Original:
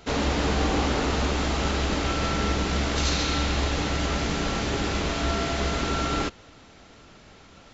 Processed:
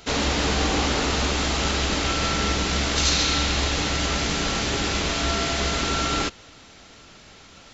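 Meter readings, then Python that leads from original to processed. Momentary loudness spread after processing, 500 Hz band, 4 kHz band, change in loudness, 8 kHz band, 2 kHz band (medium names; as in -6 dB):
3 LU, +0.5 dB, +6.5 dB, +3.0 dB, no reading, +4.0 dB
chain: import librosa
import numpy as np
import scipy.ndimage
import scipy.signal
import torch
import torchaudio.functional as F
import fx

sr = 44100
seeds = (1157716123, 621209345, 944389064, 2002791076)

y = fx.high_shelf(x, sr, hz=2100.0, db=8.5)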